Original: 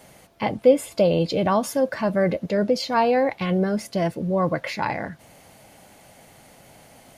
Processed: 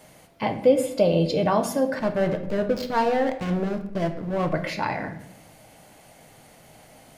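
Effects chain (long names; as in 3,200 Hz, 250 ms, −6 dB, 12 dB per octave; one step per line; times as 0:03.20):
0:01.99–0:04.53: slack as between gear wheels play −21.5 dBFS
rectangular room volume 200 cubic metres, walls mixed, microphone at 0.49 metres
level −2 dB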